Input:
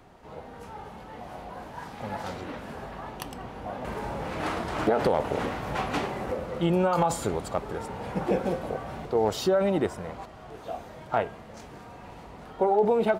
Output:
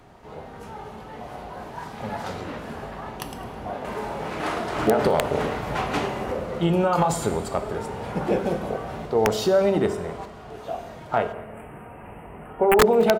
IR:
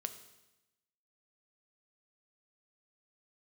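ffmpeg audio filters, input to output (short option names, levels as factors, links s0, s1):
-filter_complex "[0:a]asettb=1/sr,asplit=3[s0][s1][s2];[s0]atrim=end=3.754[s3];[s1]atrim=start=3.75:end=4.76,asetpts=PTS-STARTPTS,afade=t=in:d=0.004:c=qsin,afade=t=out:st=1.006:d=0.004:c=qsin,equalizer=f=69:t=o:w=2.3:g=-7.5[s4];[s2]atrim=start=4.756[s5];[s3][s4]acrossfade=d=0.004:c1=hsin:c2=qsin[s6];[s6][s5]acrossfade=d=0.004:c1=qsin:c2=hsin[s7];[1:a]atrim=start_sample=2205,asetrate=43659,aresample=44100[s8];[s7][s8]afir=irnorm=-1:irlink=0,aeval=exprs='(mod(4.73*val(0)+1,2)-1)/4.73':c=same,asplit=3[s9][s10][s11];[s9]afade=t=out:st=11.32:d=0.02[s12];[s10]asuperstop=centerf=5000:order=12:qfactor=0.92,afade=t=in:st=11.32:d=0.02,afade=t=out:st=12.79:d=0.02[s13];[s11]afade=t=in:st=12.79:d=0.02[s14];[s12][s13][s14]amix=inputs=3:normalize=0,aecho=1:1:212:0.0631,volume=1.78"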